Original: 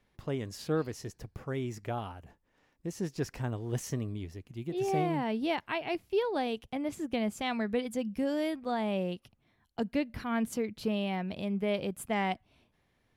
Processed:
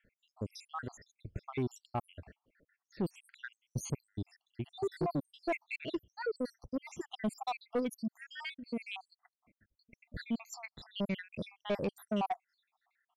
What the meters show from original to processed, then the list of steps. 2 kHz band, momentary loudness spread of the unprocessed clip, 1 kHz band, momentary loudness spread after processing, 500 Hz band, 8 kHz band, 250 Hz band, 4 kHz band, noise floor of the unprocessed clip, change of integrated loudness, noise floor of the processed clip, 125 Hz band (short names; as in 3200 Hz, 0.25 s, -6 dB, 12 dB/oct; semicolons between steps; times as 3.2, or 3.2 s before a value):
-5.0 dB, 10 LU, -5.5 dB, 12 LU, -6.5 dB, -4.5 dB, -6.5 dB, -5.5 dB, -74 dBFS, -6.0 dB, under -85 dBFS, -5.5 dB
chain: random spectral dropouts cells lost 80%; soft clip -31 dBFS, distortion -12 dB; low-pass opened by the level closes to 2300 Hz, open at -37.5 dBFS; gain +4.5 dB